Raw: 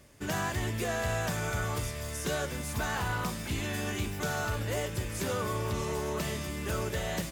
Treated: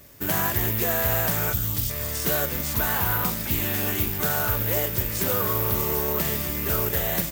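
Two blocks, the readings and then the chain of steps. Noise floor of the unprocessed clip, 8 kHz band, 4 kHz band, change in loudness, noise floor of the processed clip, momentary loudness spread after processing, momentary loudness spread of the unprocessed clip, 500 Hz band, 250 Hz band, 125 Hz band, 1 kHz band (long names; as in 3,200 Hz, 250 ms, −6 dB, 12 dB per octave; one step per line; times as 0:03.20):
−38 dBFS, +7.5 dB, +6.0 dB, +10.0 dB, −30 dBFS, 3 LU, 3 LU, +5.0 dB, +5.0 dB, +5.0 dB, +5.0 dB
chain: gain on a spectral selection 0:01.53–0:01.90, 330–2,700 Hz −14 dB
bad sample-rate conversion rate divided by 3×, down none, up zero stuff
highs frequency-modulated by the lows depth 0.27 ms
level +5 dB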